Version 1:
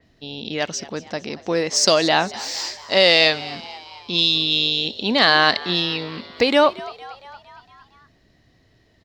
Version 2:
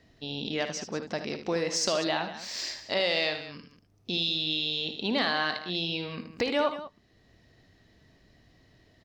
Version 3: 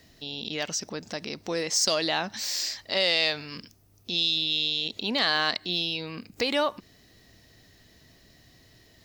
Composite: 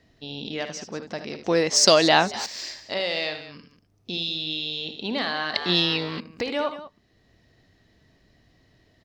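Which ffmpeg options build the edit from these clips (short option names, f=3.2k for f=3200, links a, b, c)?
-filter_complex "[0:a]asplit=2[a][b];[1:a]asplit=3[c][d][e];[c]atrim=end=1.442[f];[a]atrim=start=1.438:end=2.462[g];[d]atrim=start=2.458:end=5.542[h];[b]atrim=start=5.538:end=6.202[i];[e]atrim=start=6.198[j];[f][g]acrossfade=d=0.004:c1=hsin:c2=hsin[k];[k][h]acrossfade=d=0.004:c1=hsin:c2=hsin[l];[l][i]acrossfade=d=0.004:c1=hsin:c2=hsin[m];[m][j]acrossfade=d=0.004:c1=hsin:c2=hsin"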